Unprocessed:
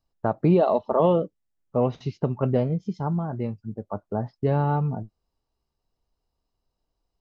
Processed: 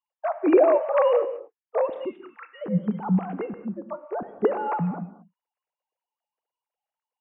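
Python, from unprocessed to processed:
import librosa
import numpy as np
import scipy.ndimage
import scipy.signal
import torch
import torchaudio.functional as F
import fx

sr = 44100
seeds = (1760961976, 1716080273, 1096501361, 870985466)

y = fx.sine_speech(x, sr)
y = fx.highpass(y, sr, hz=1300.0, slope=24, at=(2.16, 2.61), fade=0.02)
y = fx.rev_gated(y, sr, seeds[0], gate_ms=250, shape='flat', drr_db=10.5)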